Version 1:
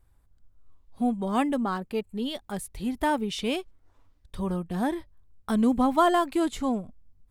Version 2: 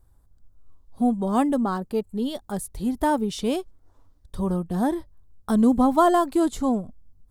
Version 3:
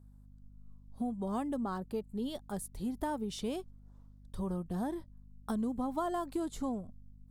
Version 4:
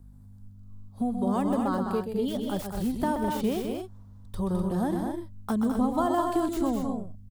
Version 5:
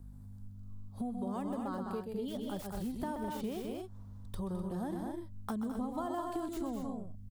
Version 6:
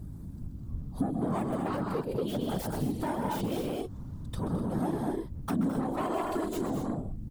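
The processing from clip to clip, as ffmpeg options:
ffmpeg -i in.wav -af "equalizer=frequency=2400:width=1.2:gain=-11.5,volume=4.5dB" out.wav
ffmpeg -i in.wav -af "acompressor=threshold=-23dB:ratio=6,aeval=exprs='val(0)+0.00501*(sin(2*PI*50*n/s)+sin(2*PI*2*50*n/s)/2+sin(2*PI*3*50*n/s)/3+sin(2*PI*4*50*n/s)/4+sin(2*PI*5*50*n/s)/5)':channel_layout=same,volume=-8.5dB" out.wav
ffmpeg -i in.wav -filter_complex "[0:a]acrossover=split=310|830|2700[link_01][link_02][link_03][link_04];[link_04]aeval=exprs='(mod(168*val(0)+1,2)-1)/168':channel_layout=same[link_05];[link_01][link_02][link_03][link_05]amix=inputs=4:normalize=0,aecho=1:1:128.3|209.9|250.7:0.447|0.501|0.398,volume=7dB" out.wav
ffmpeg -i in.wav -af "acompressor=threshold=-40dB:ratio=2.5" out.wav
ffmpeg -i in.wav -af "aeval=exprs='0.0631*(cos(1*acos(clip(val(0)/0.0631,-1,1)))-cos(1*PI/2))+0.0126*(cos(5*acos(clip(val(0)/0.0631,-1,1)))-cos(5*PI/2))':channel_layout=same,afftfilt=real='hypot(re,im)*cos(2*PI*random(0))':imag='hypot(re,im)*sin(2*PI*random(1))':win_size=512:overlap=0.75,volume=8.5dB" out.wav

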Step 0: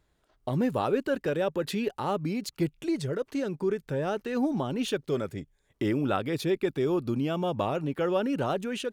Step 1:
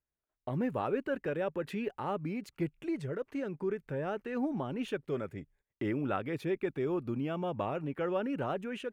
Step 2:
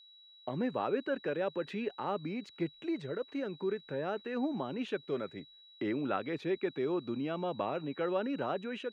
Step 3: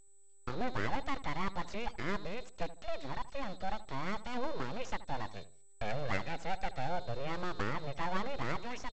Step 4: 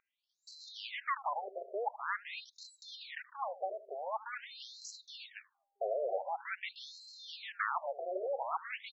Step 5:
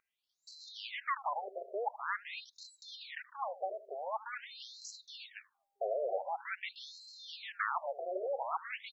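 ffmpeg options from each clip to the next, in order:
ffmpeg -i in.wav -af "agate=range=-18dB:threshold=-59dB:ratio=16:detection=peak,highshelf=frequency=3100:width_type=q:width=1.5:gain=-8.5,volume=-6dB" out.wav
ffmpeg -i in.wav -filter_complex "[0:a]acrossover=split=160 6700:gain=0.178 1 0.0708[link_01][link_02][link_03];[link_01][link_02][link_03]amix=inputs=3:normalize=0,aeval=exprs='val(0)+0.00158*sin(2*PI*3900*n/s)':channel_layout=same" out.wav
ffmpeg -i in.wav -filter_complex "[0:a]aresample=16000,aeval=exprs='abs(val(0))':channel_layout=same,aresample=44100,asplit=2[link_01][link_02];[link_02]adelay=77,lowpass=frequency=1100:poles=1,volume=-14dB,asplit=2[link_03][link_04];[link_04]adelay=77,lowpass=frequency=1100:poles=1,volume=0.35,asplit=2[link_05][link_06];[link_06]adelay=77,lowpass=frequency=1100:poles=1,volume=0.35[link_07];[link_01][link_03][link_05][link_07]amix=inputs=4:normalize=0,volume=1dB" out.wav
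ffmpeg -i in.wav -af "afftfilt=real='re*between(b*sr/1024,490*pow(5600/490,0.5+0.5*sin(2*PI*0.46*pts/sr))/1.41,490*pow(5600/490,0.5+0.5*sin(2*PI*0.46*pts/sr))*1.41)':imag='im*between(b*sr/1024,490*pow(5600/490,0.5+0.5*sin(2*PI*0.46*pts/sr))/1.41,490*pow(5600/490,0.5+0.5*sin(2*PI*0.46*pts/sr))*1.41)':win_size=1024:overlap=0.75,volume=7dB" out.wav
ffmpeg -i in.wav -ar 44100 -c:a aac -b:a 160k out.aac

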